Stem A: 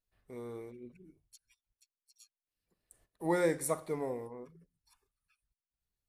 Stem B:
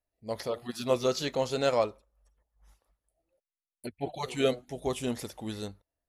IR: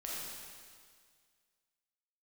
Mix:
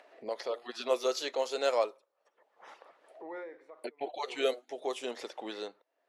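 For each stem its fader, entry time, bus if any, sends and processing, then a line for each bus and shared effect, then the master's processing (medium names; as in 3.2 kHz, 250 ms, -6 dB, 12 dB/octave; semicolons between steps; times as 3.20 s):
-10.5 dB, 0.00 s, no send, low-pass 3.6 kHz 12 dB/octave; peak limiter -27.5 dBFS, peak gain reduction 8.5 dB; auto duck -22 dB, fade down 0.45 s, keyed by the second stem
-2.0 dB, 0.00 s, no send, none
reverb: none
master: high-pass 370 Hz 24 dB/octave; level-controlled noise filter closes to 2.5 kHz, open at -26.5 dBFS; upward compressor, threshold -32 dBFS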